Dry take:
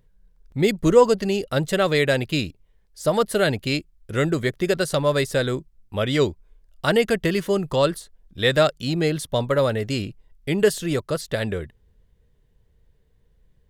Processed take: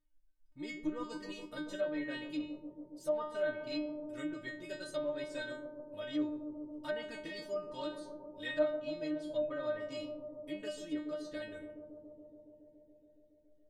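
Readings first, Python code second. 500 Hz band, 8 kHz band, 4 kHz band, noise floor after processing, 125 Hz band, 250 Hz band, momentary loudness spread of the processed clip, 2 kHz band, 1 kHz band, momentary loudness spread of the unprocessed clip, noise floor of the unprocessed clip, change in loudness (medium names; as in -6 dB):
-17.0 dB, -23.5 dB, -19.5 dB, -65 dBFS, -31.5 dB, -14.5 dB, 11 LU, -17.5 dB, -20.5 dB, 10 LU, -61 dBFS, -17.5 dB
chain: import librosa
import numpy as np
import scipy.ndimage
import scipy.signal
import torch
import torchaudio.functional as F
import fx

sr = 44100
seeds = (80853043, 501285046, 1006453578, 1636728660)

y = fx.stiff_resonator(x, sr, f0_hz=300.0, decay_s=0.42, stiffness=0.002)
y = fx.env_lowpass_down(y, sr, base_hz=1900.0, full_db=-30.0)
y = fx.echo_bbd(y, sr, ms=140, stages=1024, feedback_pct=83, wet_db=-9)
y = F.gain(torch.from_numpy(y), -2.0).numpy()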